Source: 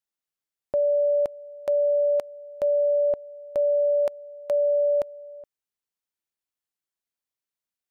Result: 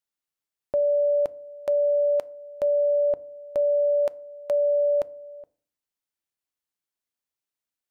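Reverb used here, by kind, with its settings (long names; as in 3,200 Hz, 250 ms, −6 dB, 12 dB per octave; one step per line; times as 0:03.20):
feedback delay network reverb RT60 0.48 s, low-frequency decay 1.45×, high-frequency decay 0.55×, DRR 18 dB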